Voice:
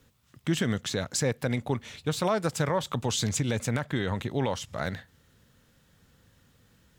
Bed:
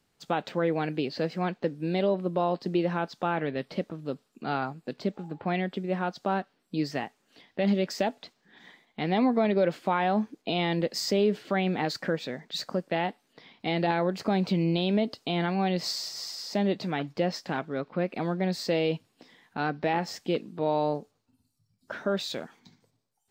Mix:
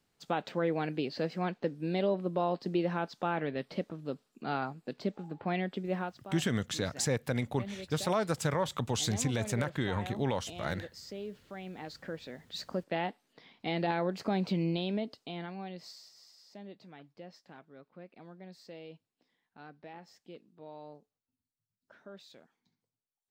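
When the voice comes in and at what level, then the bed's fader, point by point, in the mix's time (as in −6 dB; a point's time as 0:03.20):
5.85 s, −3.5 dB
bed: 0:06.00 −4 dB
0:06.22 −17.5 dB
0:11.57 −17.5 dB
0:12.79 −5 dB
0:14.65 −5 dB
0:16.23 −21.5 dB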